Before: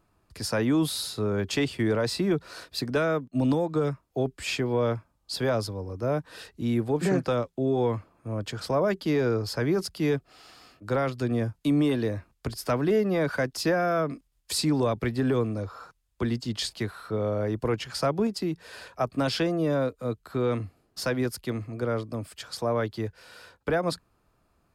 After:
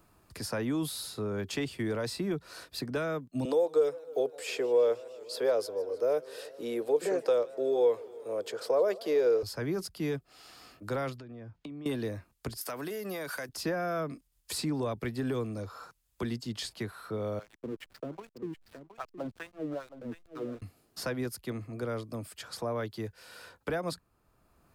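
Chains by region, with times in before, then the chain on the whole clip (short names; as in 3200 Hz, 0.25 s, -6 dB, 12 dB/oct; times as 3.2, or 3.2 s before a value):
3.45–9.43 resonant high-pass 470 Hz, resonance Q 5.4 + warbling echo 0.156 s, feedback 71%, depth 196 cents, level -22.5 dB
11.18–11.86 LPF 3100 Hz + compressor 12:1, threshold -38 dBFS
12.61–13.49 RIAA curve recording + compressor, threshold -29 dBFS
17.39–20.62 LFO band-pass sine 2.5 Hz 230–3500 Hz + backlash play -41 dBFS + echo 0.718 s -14 dB
whole clip: high shelf 8600 Hz +9 dB; three-band squash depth 40%; gain -7.5 dB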